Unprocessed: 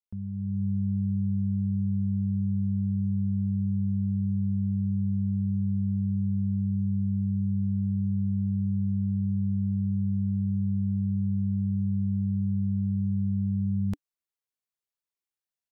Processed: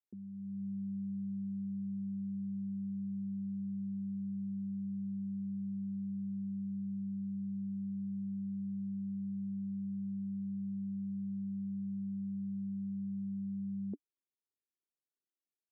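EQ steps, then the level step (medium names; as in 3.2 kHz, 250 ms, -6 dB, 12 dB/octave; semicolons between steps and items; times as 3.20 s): Butterworth band-pass 320 Hz, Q 1.8; +2.0 dB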